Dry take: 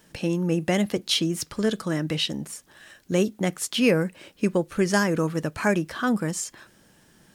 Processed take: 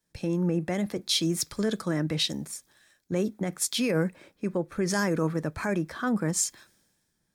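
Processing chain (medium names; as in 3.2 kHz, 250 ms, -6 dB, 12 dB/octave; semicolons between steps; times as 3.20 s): band-stop 2.9 kHz, Q 5.5; peak limiter -19 dBFS, peak gain reduction 10.5 dB; three bands expanded up and down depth 70%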